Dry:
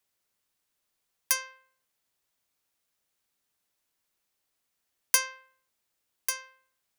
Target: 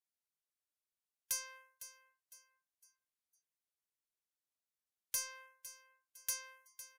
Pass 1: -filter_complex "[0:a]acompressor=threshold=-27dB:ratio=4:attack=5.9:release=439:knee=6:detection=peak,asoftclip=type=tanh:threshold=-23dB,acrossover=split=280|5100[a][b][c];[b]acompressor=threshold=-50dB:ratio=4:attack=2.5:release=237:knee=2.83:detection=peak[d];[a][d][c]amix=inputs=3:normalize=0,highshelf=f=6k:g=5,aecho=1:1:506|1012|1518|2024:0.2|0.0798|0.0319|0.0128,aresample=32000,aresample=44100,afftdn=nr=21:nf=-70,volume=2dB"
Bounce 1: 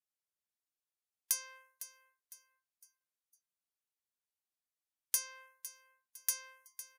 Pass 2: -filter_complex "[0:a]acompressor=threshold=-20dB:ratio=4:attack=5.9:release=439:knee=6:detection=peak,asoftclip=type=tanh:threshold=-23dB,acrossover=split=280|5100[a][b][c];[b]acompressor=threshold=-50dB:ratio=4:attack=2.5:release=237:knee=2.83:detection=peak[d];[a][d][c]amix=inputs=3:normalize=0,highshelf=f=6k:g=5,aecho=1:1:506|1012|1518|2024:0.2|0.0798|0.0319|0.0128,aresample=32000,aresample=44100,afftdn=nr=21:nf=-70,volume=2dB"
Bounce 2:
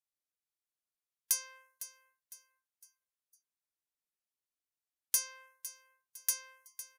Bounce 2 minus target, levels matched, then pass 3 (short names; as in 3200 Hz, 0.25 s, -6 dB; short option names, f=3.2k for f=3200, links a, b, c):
soft clip: distortion -6 dB
-filter_complex "[0:a]acompressor=threshold=-20dB:ratio=4:attack=5.9:release=439:knee=6:detection=peak,asoftclip=type=tanh:threshold=-34.5dB,acrossover=split=280|5100[a][b][c];[b]acompressor=threshold=-50dB:ratio=4:attack=2.5:release=237:knee=2.83:detection=peak[d];[a][d][c]amix=inputs=3:normalize=0,highshelf=f=6k:g=5,aecho=1:1:506|1012|1518|2024:0.2|0.0798|0.0319|0.0128,aresample=32000,aresample=44100,afftdn=nr=21:nf=-70,volume=2dB"